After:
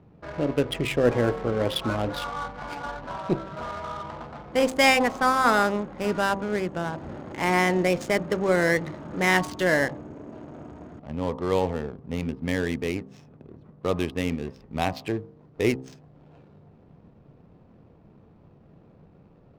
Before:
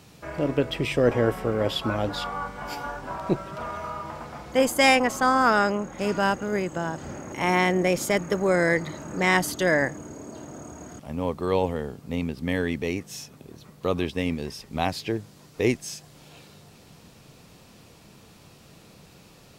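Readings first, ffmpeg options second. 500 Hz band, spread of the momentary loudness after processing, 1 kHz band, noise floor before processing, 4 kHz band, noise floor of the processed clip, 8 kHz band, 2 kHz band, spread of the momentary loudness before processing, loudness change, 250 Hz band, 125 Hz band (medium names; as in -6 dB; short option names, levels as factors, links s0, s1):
-0.5 dB, 16 LU, -0.5 dB, -52 dBFS, -0.5 dB, -55 dBFS, -3.5 dB, 0.0 dB, 17 LU, -0.5 dB, -0.5 dB, -0.5 dB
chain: -af "adynamicsmooth=sensitivity=7.5:basefreq=600,bandreject=f=65.2:t=h:w=4,bandreject=f=130.4:t=h:w=4,bandreject=f=195.6:t=h:w=4,bandreject=f=260.8:t=h:w=4,bandreject=f=326:t=h:w=4,bandreject=f=391.2:t=h:w=4,bandreject=f=456.4:t=h:w=4,bandreject=f=521.6:t=h:w=4,bandreject=f=586.8:t=h:w=4,bandreject=f=652:t=h:w=4,bandreject=f=717.2:t=h:w=4,bandreject=f=782.4:t=h:w=4,bandreject=f=847.6:t=h:w=4,bandreject=f=912.8:t=h:w=4,bandreject=f=978:t=h:w=4,bandreject=f=1043.2:t=h:w=4,bandreject=f=1108.4:t=h:w=4,bandreject=f=1173.6:t=h:w=4,bandreject=f=1238.8:t=h:w=4"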